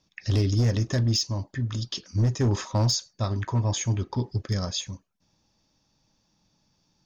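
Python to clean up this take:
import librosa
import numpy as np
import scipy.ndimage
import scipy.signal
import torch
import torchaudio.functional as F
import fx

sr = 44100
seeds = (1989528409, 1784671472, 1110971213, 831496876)

y = fx.fix_declip(x, sr, threshold_db=-17.5)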